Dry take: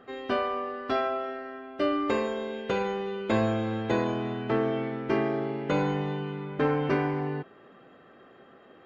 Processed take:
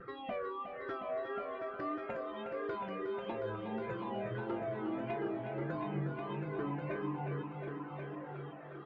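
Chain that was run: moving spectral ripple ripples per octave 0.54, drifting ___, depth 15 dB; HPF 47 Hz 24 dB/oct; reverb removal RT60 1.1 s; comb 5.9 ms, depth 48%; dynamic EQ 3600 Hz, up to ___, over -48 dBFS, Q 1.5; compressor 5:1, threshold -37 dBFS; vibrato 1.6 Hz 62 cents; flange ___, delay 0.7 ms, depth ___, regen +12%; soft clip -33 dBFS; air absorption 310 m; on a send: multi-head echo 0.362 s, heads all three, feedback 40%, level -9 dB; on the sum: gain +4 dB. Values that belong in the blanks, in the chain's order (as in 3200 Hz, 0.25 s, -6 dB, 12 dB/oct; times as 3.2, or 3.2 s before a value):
-2.3 Hz, -4 dB, 0.51 Hz, 2.7 ms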